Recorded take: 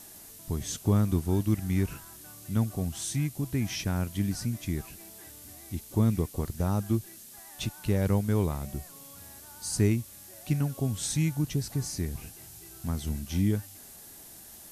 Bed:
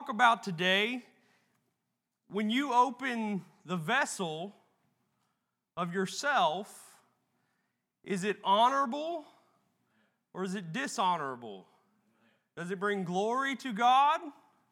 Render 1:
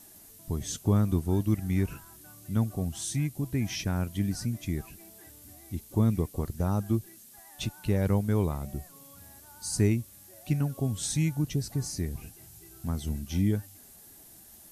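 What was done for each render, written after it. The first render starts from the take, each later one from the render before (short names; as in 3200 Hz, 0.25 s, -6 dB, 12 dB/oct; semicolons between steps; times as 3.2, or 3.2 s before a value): denoiser 6 dB, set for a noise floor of -49 dBFS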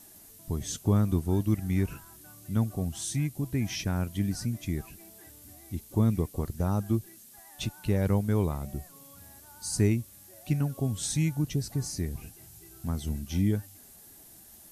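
nothing audible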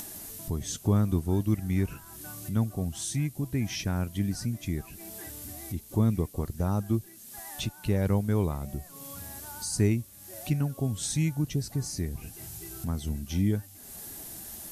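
upward compressor, threshold -31 dBFS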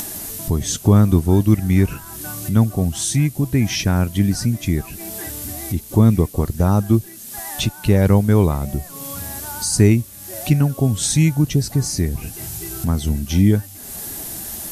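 gain +12 dB; limiter -2 dBFS, peak gain reduction 1 dB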